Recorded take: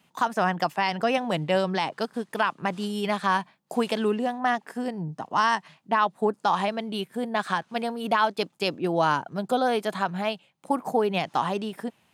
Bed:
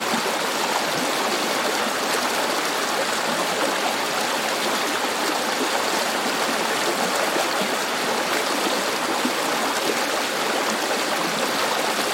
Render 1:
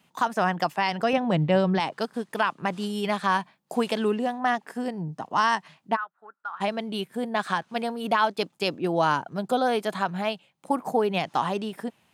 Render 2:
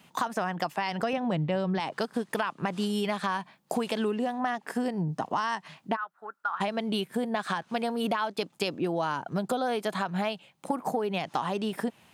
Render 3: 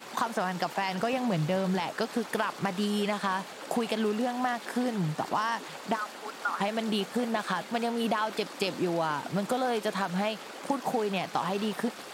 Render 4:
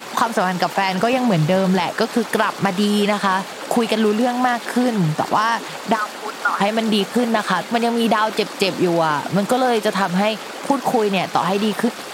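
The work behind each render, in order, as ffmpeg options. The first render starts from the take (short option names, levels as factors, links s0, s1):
-filter_complex "[0:a]asettb=1/sr,asplit=3[s0][s1][s2];[s0]atrim=end=1.134[s3];[s1]atrim=start=1.13:end=1.8,asetpts=PTS-STARTPTS,afade=t=in:d=0.004:c=qsin,afade=t=out:st=0.666:d=0.004:c=qsin,aemphasis=mode=reproduction:type=bsi[s4];[s2]atrim=start=1.796[s5];[s3][s4]acrossfade=d=0.004:c1=hsin:c2=qsin[s6];[s6][s5]acrossfade=d=0.004:c1=qsin:c2=hsin,asplit=3[s7][s8][s9];[s7]afade=t=out:st=5.95:d=0.02[s10];[s8]bandpass=f=1400:t=q:w=9.5,afade=t=in:st=5.95:d=0.02,afade=t=out:st=6.6:d=0.02[s11];[s9]afade=t=in:st=6.6:d=0.02[s12];[s10][s11][s12]amix=inputs=3:normalize=0"
-filter_complex "[0:a]asplit=2[s0][s1];[s1]alimiter=limit=0.0891:level=0:latency=1:release=143,volume=1.12[s2];[s0][s2]amix=inputs=2:normalize=0,acompressor=threshold=0.0501:ratio=6"
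-filter_complex "[1:a]volume=0.0944[s0];[0:a][s0]amix=inputs=2:normalize=0"
-af "volume=3.76"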